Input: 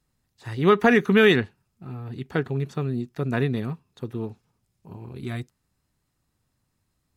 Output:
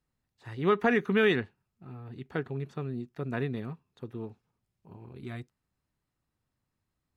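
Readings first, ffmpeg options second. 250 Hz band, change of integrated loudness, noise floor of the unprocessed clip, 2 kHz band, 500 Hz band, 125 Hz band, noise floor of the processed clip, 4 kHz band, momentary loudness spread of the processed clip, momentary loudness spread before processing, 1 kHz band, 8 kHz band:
-8.0 dB, -7.5 dB, -75 dBFS, -7.5 dB, -7.0 dB, -9.0 dB, -84 dBFS, -9.5 dB, 20 LU, 19 LU, -7.0 dB, no reading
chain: -af "bass=f=250:g=-2,treble=f=4000:g=-7,volume=0.447"

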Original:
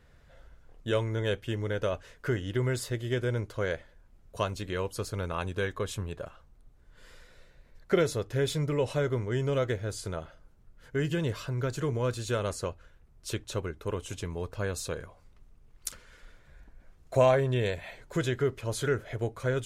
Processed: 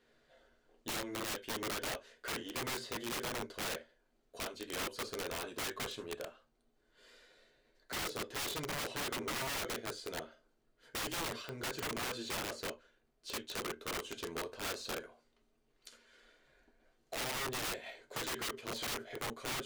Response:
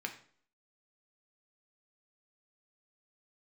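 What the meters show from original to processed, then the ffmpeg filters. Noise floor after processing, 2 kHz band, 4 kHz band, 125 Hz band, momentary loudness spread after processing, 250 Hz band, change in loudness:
-76 dBFS, -3.5 dB, +1.0 dB, -20.5 dB, 7 LU, -11.0 dB, -8.0 dB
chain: -filter_complex "[0:a]alimiter=limit=0.0944:level=0:latency=1:release=401[s0];[1:a]atrim=start_sample=2205,afade=t=out:st=0.24:d=0.01,atrim=end_sample=11025,asetrate=83790,aresample=44100[s1];[s0][s1]afir=irnorm=-1:irlink=0,acrossover=split=5100[s2][s3];[s3]acompressor=threshold=0.00112:ratio=4:attack=1:release=60[s4];[s2][s4]amix=inputs=2:normalize=0,aeval=exprs='(mod(59.6*val(0)+1,2)-1)/59.6':c=same,aeval=exprs='0.0168*(cos(1*acos(clip(val(0)/0.0168,-1,1)))-cos(1*PI/2))+0.000596*(cos(7*acos(clip(val(0)/0.0168,-1,1)))-cos(7*PI/2))':c=same,volume=1.33"

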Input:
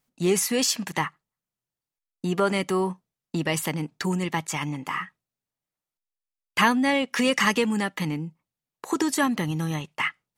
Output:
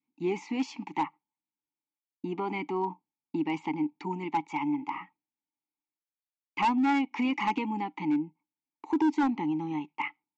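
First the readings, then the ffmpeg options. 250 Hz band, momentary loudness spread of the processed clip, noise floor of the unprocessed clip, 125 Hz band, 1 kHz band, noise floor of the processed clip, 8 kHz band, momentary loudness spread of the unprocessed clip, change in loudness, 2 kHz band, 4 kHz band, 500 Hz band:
-2.5 dB, 10 LU, under -85 dBFS, -13.0 dB, -1.5 dB, under -85 dBFS, under -25 dB, 11 LU, -5.5 dB, -10.5 dB, -15.0 dB, -9.5 dB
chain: -filter_complex "[0:a]acontrast=38,adynamicequalizer=threshold=0.0178:dfrequency=840:dqfactor=1.9:tfrequency=840:tqfactor=1.9:attack=5:release=100:ratio=0.375:range=3.5:mode=boostabove:tftype=bell,asplit=3[s0][s1][s2];[s0]bandpass=f=300:t=q:w=8,volume=1[s3];[s1]bandpass=f=870:t=q:w=8,volume=0.501[s4];[s2]bandpass=f=2240:t=q:w=8,volume=0.355[s5];[s3][s4][s5]amix=inputs=3:normalize=0,aresample=16000,asoftclip=type=hard:threshold=0.0891,aresample=44100"

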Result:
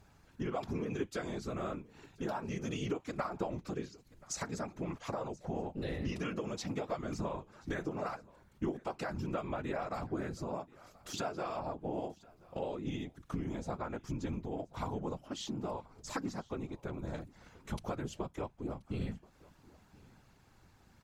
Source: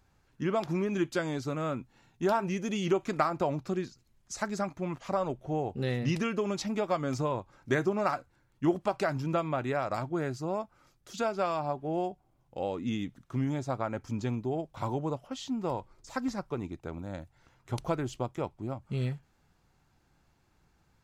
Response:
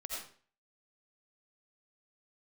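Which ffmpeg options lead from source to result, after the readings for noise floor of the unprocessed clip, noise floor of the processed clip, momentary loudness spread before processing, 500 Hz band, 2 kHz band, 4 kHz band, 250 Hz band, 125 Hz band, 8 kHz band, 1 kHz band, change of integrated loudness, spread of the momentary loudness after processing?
-69 dBFS, -65 dBFS, 9 LU, -8.0 dB, -7.5 dB, -4.5 dB, -6.5 dB, -7.0 dB, -2.0 dB, -8.0 dB, -7.0 dB, 6 LU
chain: -af "acompressor=threshold=0.00631:ratio=3,afftfilt=real='hypot(re,im)*cos(2*PI*random(0))':imag='hypot(re,im)*sin(2*PI*random(1))':win_size=512:overlap=0.75,aecho=1:1:1030:0.0668,volume=3.55"

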